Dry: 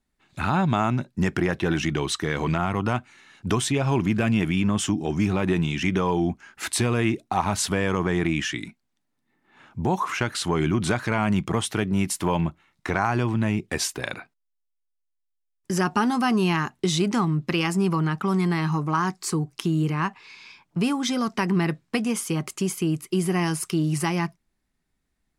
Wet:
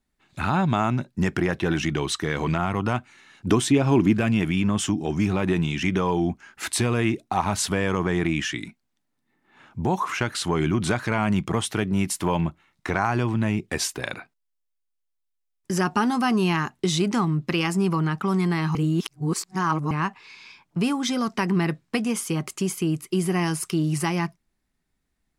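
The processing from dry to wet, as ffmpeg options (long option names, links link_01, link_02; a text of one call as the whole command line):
ffmpeg -i in.wav -filter_complex "[0:a]asettb=1/sr,asplit=3[link_01][link_02][link_03];[link_01]atrim=end=3.474[link_04];[link_02]atrim=start=3.47:end=4.13,asetpts=PTS-STARTPTS,afade=type=in:duration=0.004:curve=qsin,afade=type=out:start_time=0.656:duration=0.004:curve=qsin,equalizer=frequency=300:width=1.5:gain=8[link_05];[link_03]atrim=start=4.126[link_06];[link_04][link_05]acrossfade=duration=0.004:curve1=hsin:curve2=qsin[link_07];[link_07][link_06]acrossfade=duration=0.004:curve1=qsin:curve2=hsin,asplit=3[link_08][link_09][link_10];[link_08]atrim=end=18.752[link_11];[link_09]atrim=start=18.748:end=19.912,asetpts=PTS-STARTPTS,areverse[link_12];[link_10]atrim=start=19.908[link_13];[link_11][link_12]acrossfade=duration=0.004:curve1=hsin:curve2=hsin[link_14];[link_14][link_13]acrossfade=duration=0.004:curve1=hsin:curve2=hsin" out.wav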